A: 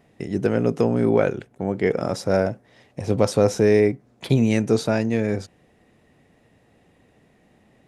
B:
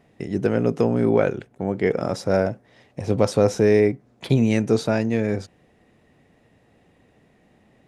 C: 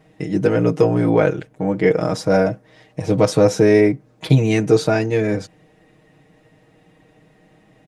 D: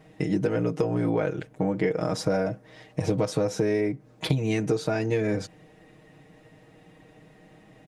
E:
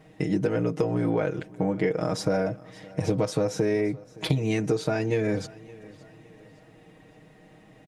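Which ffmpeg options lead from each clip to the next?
ffmpeg -i in.wav -af "highshelf=frequency=8000:gain=-5" out.wav
ffmpeg -i in.wav -af "aecho=1:1:6.4:0.89,volume=2.5dB" out.wav
ffmpeg -i in.wav -af "acompressor=threshold=-21dB:ratio=12" out.wav
ffmpeg -i in.wav -af "aecho=1:1:567|1134|1701:0.0841|0.0353|0.0148" out.wav

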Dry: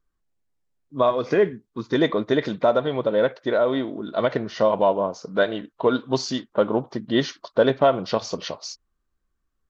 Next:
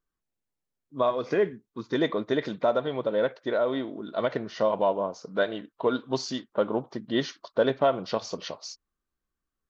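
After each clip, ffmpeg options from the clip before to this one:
ffmpeg -i in.wav -af "lowshelf=frequency=77:gain=-8.5,volume=-5dB" out.wav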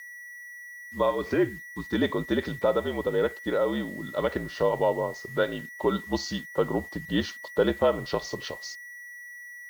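ffmpeg -i in.wav -af "aeval=exprs='val(0)+0.01*sin(2*PI*2000*n/s)':channel_layout=same,afreqshift=-57,acrusher=bits=7:mix=0:aa=0.5" out.wav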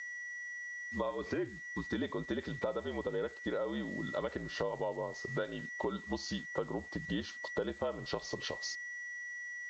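ffmpeg -i in.wav -af "acompressor=threshold=-34dB:ratio=5,aresample=16000,aeval=exprs='val(0)*gte(abs(val(0)),0.00158)':channel_layout=same,aresample=44100" out.wav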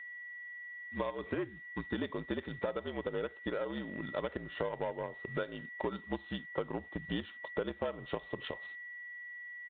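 ffmpeg -i in.wav -filter_complex "[0:a]asplit=2[link_01][link_02];[link_02]acrusher=bits=4:mix=0:aa=0.5,volume=-6.5dB[link_03];[link_01][link_03]amix=inputs=2:normalize=0,aresample=8000,aresample=44100,volume=-3dB" out.wav

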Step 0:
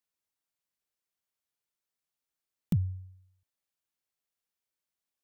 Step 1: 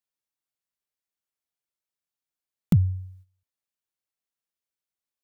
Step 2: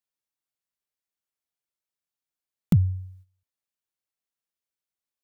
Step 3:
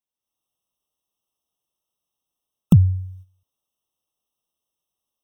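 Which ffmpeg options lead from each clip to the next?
ffmpeg -i in.wav -af "agate=range=-12dB:threshold=-58dB:ratio=16:detection=peak,volume=8.5dB" out.wav
ffmpeg -i in.wav -af anull out.wav
ffmpeg -i in.wav -af "dynaudnorm=framelen=180:gausssize=3:maxgain=10dB,afftfilt=real='re*eq(mod(floor(b*sr/1024/1300),2),0)':imag='im*eq(mod(floor(b*sr/1024/1300),2),0)':win_size=1024:overlap=0.75" out.wav

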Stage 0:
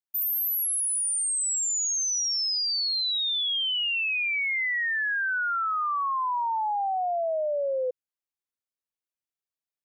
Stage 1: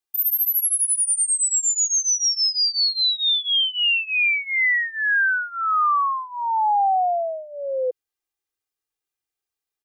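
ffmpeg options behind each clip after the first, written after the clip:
ffmpeg -i in.wav -af "aecho=1:1:2.5:0.86,volume=3.5dB" out.wav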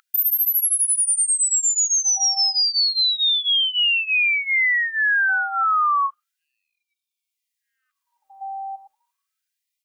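ffmpeg -i in.wav -af "aeval=exprs='val(0)+0.0224*sin(2*PI*780*n/s)':channel_layout=same,acompressor=threshold=-23dB:ratio=6,afftfilt=real='re*gte(b*sr/1024,750*pow(2300/750,0.5+0.5*sin(2*PI*0.32*pts/sr)))':imag='im*gte(b*sr/1024,750*pow(2300/750,0.5+0.5*sin(2*PI*0.32*pts/sr)))':win_size=1024:overlap=0.75,volume=6dB" out.wav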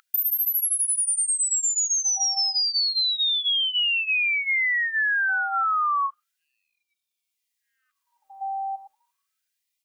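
ffmpeg -i in.wav -af "acompressor=threshold=-23dB:ratio=6,volume=1.5dB" out.wav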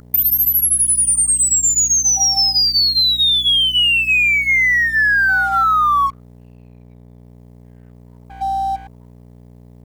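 ffmpeg -i in.wav -filter_complex "[0:a]asplit=2[link_01][link_02];[link_02]asoftclip=type=hard:threshold=-28.5dB,volume=-6.5dB[link_03];[link_01][link_03]amix=inputs=2:normalize=0,aeval=exprs='val(0)+0.00891*(sin(2*PI*60*n/s)+sin(2*PI*2*60*n/s)/2+sin(2*PI*3*60*n/s)/3+sin(2*PI*4*60*n/s)/4+sin(2*PI*5*60*n/s)/5)':channel_layout=same,aeval=exprs='sgn(val(0))*max(abs(val(0))-0.00596,0)':channel_layout=same,volume=7.5dB" out.wav

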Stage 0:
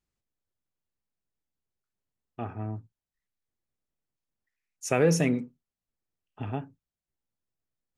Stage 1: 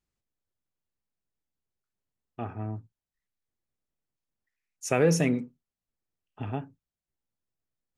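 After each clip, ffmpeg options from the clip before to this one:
ffmpeg -i in.wav -af anull out.wav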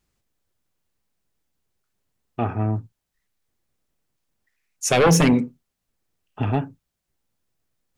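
ffmpeg -i in.wav -af "aeval=exprs='0.282*sin(PI/2*2.51*val(0)/0.282)':channel_layout=same" out.wav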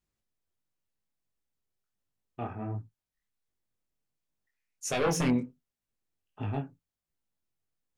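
ffmpeg -i in.wav -af "flanger=delay=19:depth=5.3:speed=1.4,volume=-8.5dB" out.wav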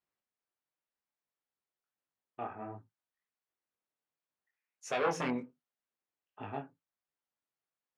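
ffmpeg -i in.wav -af "bandpass=frequency=1100:width_type=q:width=0.62:csg=0" out.wav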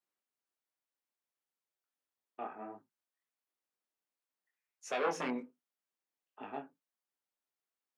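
ffmpeg -i in.wav -af "highpass=frequency=200:width=0.5412,highpass=frequency=200:width=1.3066,volume=-2dB" out.wav

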